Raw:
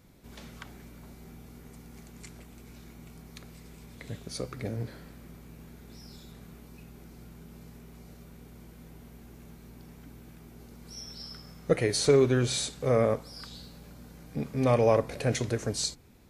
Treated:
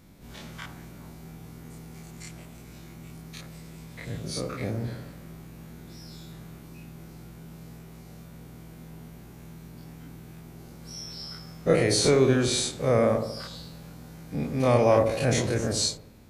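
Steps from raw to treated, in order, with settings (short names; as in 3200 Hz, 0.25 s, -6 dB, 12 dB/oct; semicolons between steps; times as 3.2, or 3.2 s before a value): spectral dilation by 60 ms; bell 430 Hz -4 dB 0.24 oct; on a send: dark delay 74 ms, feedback 51%, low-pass 970 Hz, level -6 dB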